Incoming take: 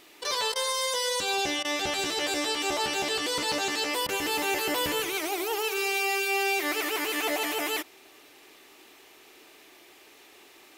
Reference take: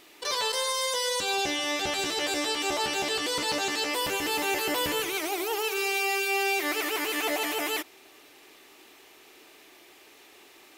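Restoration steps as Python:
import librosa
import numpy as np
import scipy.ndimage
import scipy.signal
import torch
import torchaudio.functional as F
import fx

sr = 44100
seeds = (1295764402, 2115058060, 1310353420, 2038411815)

y = fx.fix_interpolate(x, sr, at_s=(0.54, 1.63, 4.07), length_ms=16.0)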